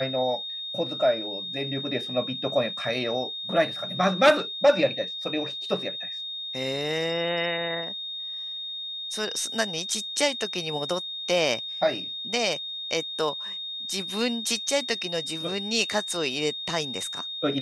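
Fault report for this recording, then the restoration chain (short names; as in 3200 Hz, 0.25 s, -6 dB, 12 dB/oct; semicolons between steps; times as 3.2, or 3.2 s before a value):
tone 3700 Hz -32 dBFS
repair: notch 3700 Hz, Q 30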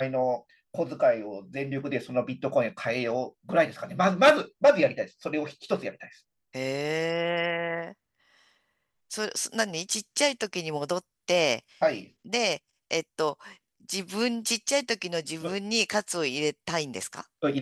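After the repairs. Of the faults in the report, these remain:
none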